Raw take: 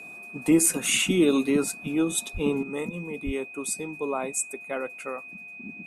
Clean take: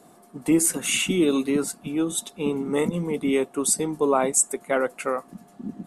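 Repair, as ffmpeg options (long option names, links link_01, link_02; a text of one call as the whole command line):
ffmpeg -i in.wav -filter_complex "[0:a]bandreject=frequency=2500:width=30,asplit=3[link_01][link_02][link_03];[link_01]afade=type=out:start_time=2.33:duration=0.02[link_04];[link_02]highpass=frequency=140:width=0.5412,highpass=frequency=140:width=1.3066,afade=type=in:start_time=2.33:duration=0.02,afade=type=out:start_time=2.45:duration=0.02[link_05];[link_03]afade=type=in:start_time=2.45:duration=0.02[link_06];[link_04][link_05][link_06]amix=inputs=3:normalize=0,asplit=3[link_07][link_08][link_09];[link_07]afade=type=out:start_time=3.25:duration=0.02[link_10];[link_08]highpass=frequency=140:width=0.5412,highpass=frequency=140:width=1.3066,afade=type=in:start_time=3.25:duration=0.02,afade=type=out:start_time=3.37:duration=0.02[link_11];[link_09]afade=type=in:start_time=3.37:duration=0.02[link_12];[link_10][link_11][link_12]amix=inputs=3:normalize=0,asetnsamples=nb_out_samples=441:pad=0,asendcmd='2.63 volume volume 8.5dB',volume=0dB" out.wav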